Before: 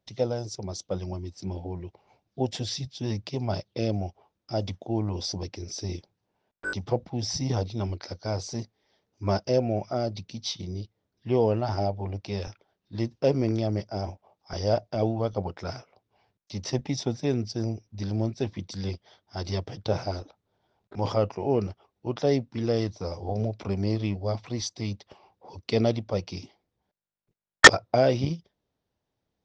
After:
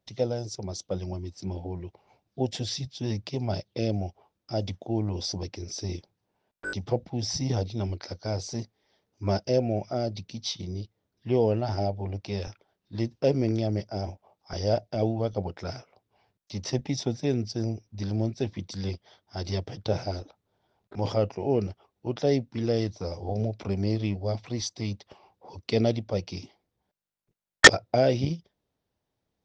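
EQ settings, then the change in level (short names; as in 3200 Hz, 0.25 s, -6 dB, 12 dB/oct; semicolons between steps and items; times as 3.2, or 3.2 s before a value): dynamic EQ 1100 Hz, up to -7 dB, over -47 dBFS, Q 2.1; 0.0 dB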